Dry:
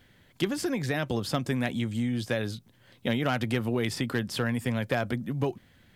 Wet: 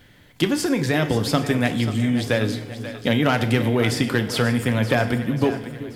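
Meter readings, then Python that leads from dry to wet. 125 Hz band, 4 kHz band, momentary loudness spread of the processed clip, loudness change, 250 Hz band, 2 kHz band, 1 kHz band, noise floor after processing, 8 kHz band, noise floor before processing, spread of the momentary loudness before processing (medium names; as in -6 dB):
+8.5 dB, +8.5 dB, 5 LU, +8.0 dB, +8.5 dB, +8.5 dB, +8.5 dB, -51 dBFS, +8.5 dB, -61 dBFS, 5 LU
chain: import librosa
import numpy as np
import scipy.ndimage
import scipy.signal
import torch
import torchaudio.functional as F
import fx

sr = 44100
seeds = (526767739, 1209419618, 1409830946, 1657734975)

y = fx.echo_split(x, sr, split_hz=450.0, low_ms=383, high_ms=535, feedback_pct=52, wet_db=-12.0)
y = fx.rev_fdn(y, sr, rt60_s=0.82, lf_ratio=0.7, hf_ratio=0.85, size_ms=20.0, drr_db=7.5)
y = F.gain(torch.from_numpy(y), 7.5).numpy()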